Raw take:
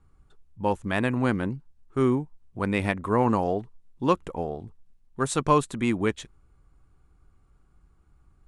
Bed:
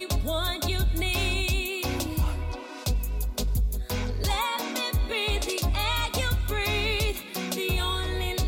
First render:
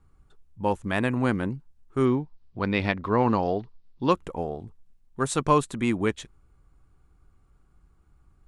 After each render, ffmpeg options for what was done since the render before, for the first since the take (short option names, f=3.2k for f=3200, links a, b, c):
-filter_complex "[0:a]asettb=1/sr,asplit=3[a][b][c];[a]atrim=end=2.054[d];[b]atrim=start=2.05:end=4.11,asetpts=PTS-STARTPTS,afade=t=in:d=0.004:c=qsin,afade=t=out:st=2.056:d=0.004:c=qsin,highshelf=f=6.4k:t=q:w=3:g=-12[e];[c]atrim=start=4.106[f];[d][e]acrossfade=d=0.004:c1=hsin:c2=qsin[g];[g][f]acrossfade=d=0.004:c1=qsin:c2=hsin"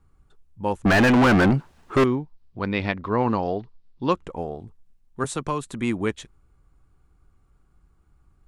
-filter_complex "[0:a]asettb=1/sr,asplit=3[a][b][c];[a]atrim=end=0.854[d];[b]atrim=start=0.85:end=2.04,asetpts=PTS-STARTPTS,afade=t=in:d=0.004:c=qsin,afade=t=out:st=1.186:d=0.004:c=qsin,asplit=2[e][f];[f]highpass=f=720:p=1,volume=37dB,asoftclip=type=tanh:threshold=-9dB[g];[e][g]amix=inputs=2:normalize=0,lowpass=f=2.1k:p=1,volume=-6dB[h];[c]atrim=start=2.036[i];[d][h]acrossfade=d=0.004:c1=hsin:c2=qsin[j];[j][i]acrossfade=d=0.004:c1=qsin:c2=hsin,asettb=1/sr,asplit=3[k][l][m];[k]atrim=end=2.674[n];[l]atrim=start=2.67:end=4.34,asetpts=PTS-STARTPTS,afade=t=in:d=0.004:c=qsin,afade=t=out:st=1.666:d=0.004:c=qsin,lowpass=7.4k[o];[m]atrim=start=4.336[p];[n][o]acrossfade=d=0.004:c1=hsin:c2=qsin[q];[q][p]acrossfade=d=0.004:c1=qsin:c2=hsin,asettb=1/sr,asplit=3[r][s][t];[r]atrim=end=5.244[u];[s]atrim=start=5.24:end=5.67,asetpts=PTS-STARTPTS,afade=t=in:d=0.004:c=qsin,afade=t=out:st=0.426:d=0.004:c=qsin,acrossover=split=310|990[v][w][x];[v]acompressor=threshold=-30dB:ratio=4[y];[w]acompressor=threshold=-30dB:ratio=4[z];[x]acompressor=threshold=-31dB:ratio=4[aa];[y][z][aa]amix=inputs=3:normalize=0[ab];[t]atrim=start=5.666[ac];[u][ab]acrossfade=d=0.004:c1=hsin:c2=qsin[ad];[ad][ac]acrossfade=d=0.004:c1=qsin:c2=hsin"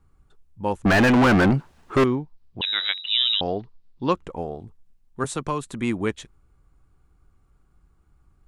-filter_complex "[0:a]asettb=1/sr,asplit=3[a][b][c];[a]atrim=end=2.614[d];[b]atrim=start=2.61:end=3.41,asetpts=PTS-STARTPTS,afade=t=in:d=0.004:c=qsin,afade=t=out:st=0.796:d=0.004:c=qsin,lowpass=f=3.4k:t=q:w=0.5098,lowpass=f=3.4k:t=q:w=0.6013,lowpass=f=3.4k:t=q:w=0.9,lowpass=f=3.4k:t=q:w=2.563,afreqshift=-4000[e];[c]atrim=start=3.406[f];[d][e]acrossfade=d=0.004:c1=hsin:c2=qsin[g];[g][f]acrossfade=d=0.004:c1=qsin:c2=hsin"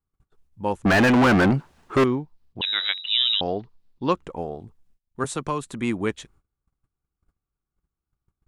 -af "agate=range=-22dB:threshold=-53dB:ratio=16:detection=peak,lowshelf=f=67:g=-6"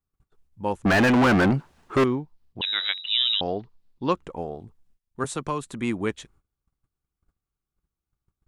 -af "volume=-1.5dB"